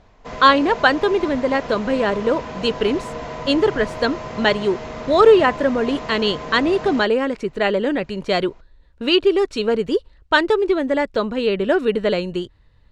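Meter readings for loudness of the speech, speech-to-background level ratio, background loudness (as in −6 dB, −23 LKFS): −19.0 LKFS, 12.5 dB, −31.5 LKFS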